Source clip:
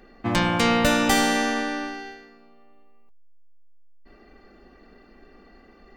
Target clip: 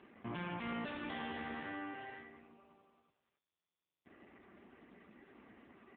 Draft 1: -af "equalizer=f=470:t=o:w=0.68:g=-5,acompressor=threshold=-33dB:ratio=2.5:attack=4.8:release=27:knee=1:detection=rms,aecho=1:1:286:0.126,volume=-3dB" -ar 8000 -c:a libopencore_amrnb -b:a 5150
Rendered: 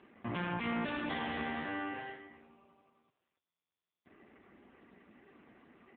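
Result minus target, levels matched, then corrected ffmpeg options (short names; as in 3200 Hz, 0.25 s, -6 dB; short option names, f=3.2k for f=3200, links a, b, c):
compressor: peak gain reduction -5.5 dB
-af "equalizer=f=470:t=o:w=0.68:g=-5,acompressor=threshold=-42.5dB:ratio=2.5:attack=4.8:release=27:knee=1:detection=rms,aecho=1:1:286:0.126,volume=-3dB" -ar 8000 -c:a libopencore_amrnb -b:a 5150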